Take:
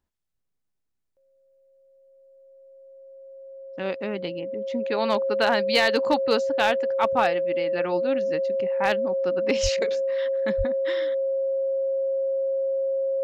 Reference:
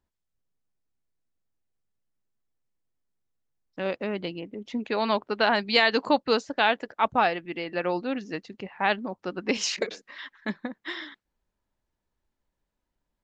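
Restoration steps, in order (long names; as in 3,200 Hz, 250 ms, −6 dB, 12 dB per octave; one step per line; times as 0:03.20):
clipped peaks rebuilt −12 dBFS
notch filter 540 Hz, Q 30
high-pass at the plosives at 0:09.62/0:10.57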